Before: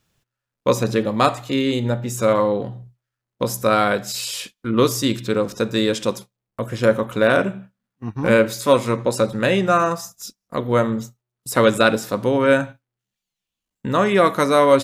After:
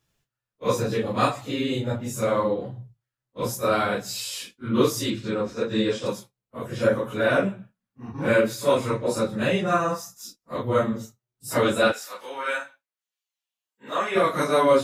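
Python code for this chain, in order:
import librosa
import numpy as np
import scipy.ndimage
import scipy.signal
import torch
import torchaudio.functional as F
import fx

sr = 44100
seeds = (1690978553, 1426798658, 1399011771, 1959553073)

y = fx.phase_scramble(x, sr, seeds[0], window_ms=100)
y = fx.air_absorb(y, sr, metres=63.0, at=(5.1, 6.06))
y = fx.highpass(y, sr, hz=fx.line((11.91, 1300.0), (14.14, 510.0)), slope=12, at=(11.91, 14.14), fade=0.02)
y = F.gain(torch.from_numpy(y), -5.0).numpy()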